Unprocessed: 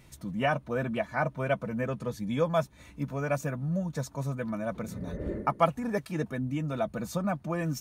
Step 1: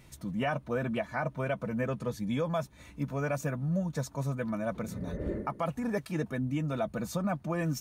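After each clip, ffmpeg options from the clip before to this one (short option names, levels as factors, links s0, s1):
-af "alimiter=limit=0.0841:level=0:latency=1:release=57"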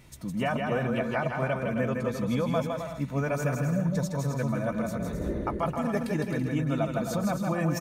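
-af "aecho=1:1:160|264|331.6|375.5|404.1:0.631|0.398|0.251|0.158|0.1,volume=1.26"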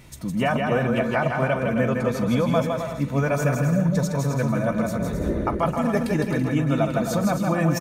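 -af "aecho=1:1:42|841:0.126|0.15,volume=2"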